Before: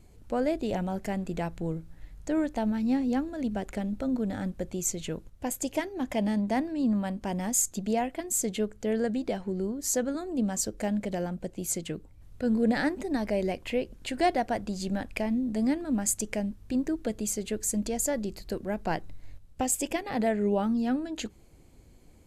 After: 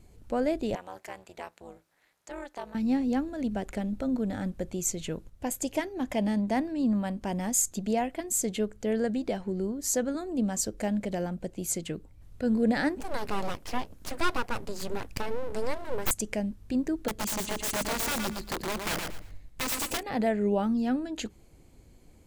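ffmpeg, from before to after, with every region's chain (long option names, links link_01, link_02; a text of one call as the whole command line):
ffmpeg -i in.wav -filter_complex "[0:a]asettb=1/sr,asplit=3[link_01][link_02][link_03];[link_01]atrim=end=0.754[link_04];[link_02]atrim=start=0.75:end=2.75,asetpts=PTS-STARTPTS,afade=type=in:duration=0.004:curve=qsin,afade=type=out:start_time=1.996:duration=0.004:curve=qsin,highpass=640,tremolo=f=270:d=0.919[link_05];[link_03]atrim=start=2.746[link_06];[link_04][link_05]acrossfade=duration=0.004:curve1=hsin:curve2=qsin[link_07];[link_07][link_06]acrossfade=duration=0.004:curve1=qsin:curve2=hsin,asettb=1/sr,asplit=3[link_08][link_09][link_10];[link_08]atrim=end=13.004[link_11];[link_09]atrim=start=13:end=16.11,asetpts=PTS-STARTPTS,afade=type=in:duration=0.004:curve=qsin,afade=type=out:start_time=3.106:duration=0.004:curve=qsin,highshelf=frequency=11000:gain=9,aeval=exprs='abs(val(0))':channel_layout=same[link_12];[link_10]atrim=start=16.106[link_13];[link_11][link_12]acrossfade=duration=0.004:curve1=hsin:curve2=qsin[link_14];[link_14][link_13]acrossfade=duration=0.004:curve1=qsin:curve2=hsin,asettb=1/sr,asplit=3[link_15][link_16][link_17];[link_15]atrim=end=17.084[link_18];[link_16]atrim=start=17.08:end=20.03,asetpts=PTS-STARTPTS,afade=type=in:duration=0.004:curve=qsin,afade=type=out:start_time=2.946:duration=0.004:curve=qsin,aeval=exprs='(mod(18.8*val(0)+1,2)-1)/18.8':channel_layout=same,aecho=1:1:116|232|348:0.562|0.135|0.0324,atrim=end_sample=130095[link_19];[link_17]atrim=start=20.026[link_20];[link_18][link_19]acrossfade=duration=0.004:curve1=hsin:curve2=qsin[link_21];[link_21][link_20]acrossfade=duration=0.004:curve1=qsin:curve2=hsin" out.wav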